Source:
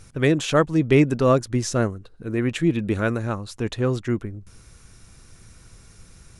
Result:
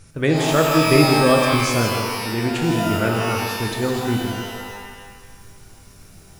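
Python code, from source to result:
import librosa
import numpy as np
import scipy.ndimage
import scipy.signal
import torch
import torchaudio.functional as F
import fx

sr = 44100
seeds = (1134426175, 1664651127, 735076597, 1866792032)

y = x + 10.0 ** (-8.0 / 20.0) * np.pad(x, (int(163 * sr / 1000.0), 0))[:len(x)]
y = fx.rev_shimmer(y, sr, seeds[0], rt60_s=1.3, semitones=12, shimmer_db=-2, drr_db=2.0)
y = y * librosa.db_to_amplitude(-1.0)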